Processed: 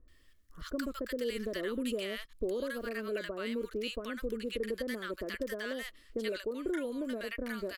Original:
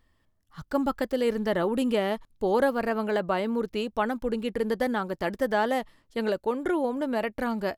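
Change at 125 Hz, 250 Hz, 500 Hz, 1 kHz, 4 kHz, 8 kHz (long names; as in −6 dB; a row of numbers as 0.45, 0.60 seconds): −12.0 dB, −9.0 dB, −9.0 dB, −18.5 dB, −3.0 dB, can't be measured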